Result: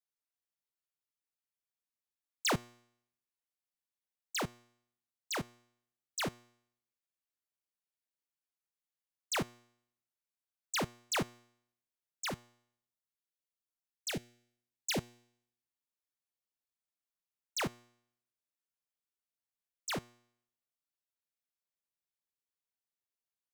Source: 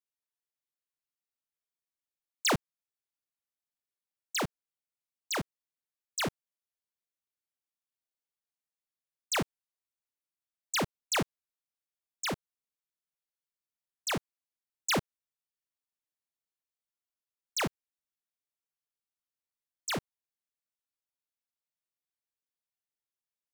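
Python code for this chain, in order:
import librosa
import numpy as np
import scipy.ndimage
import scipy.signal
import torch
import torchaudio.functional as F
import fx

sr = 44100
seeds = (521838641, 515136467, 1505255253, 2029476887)

y = fx.filter_lfo_notch(x, sr, shape='saw_up', hz=1.3, low_hz=550.0, high_hz=3300.0, q=0.78, at=(12.28, 14.97), fade=0.02)
y = fx.comb_fb(y, sr, f0_hz=120.0, decay_s=0.69, harmonics='all', damping=0.0, mix_pct=40)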